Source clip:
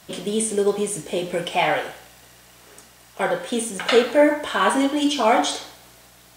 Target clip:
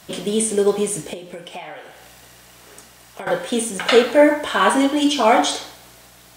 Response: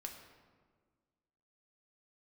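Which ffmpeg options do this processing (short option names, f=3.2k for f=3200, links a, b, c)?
-filter_complex "[0:a]asettb=1/sr,asplit=3[a][b][c];[a]atrim=end=1.134[d];[b]atrim=start=1.13:end=3.27,asetpts=PTS-STARTPTS,afade=t=in:d=0.004:c=qsin,afade=t=out:st=2.136:d=0.004:c=qsin,acompressor=threshold=-34dB:ratio=16[e];[c]atrim=start=3.266[f];[d][e]acrossfade=d=0.004:c1=hsin:c2=qsin[g];[g][f]acrossfade=d=0.004:c1=qsin:c2=hsin,volume=3dB"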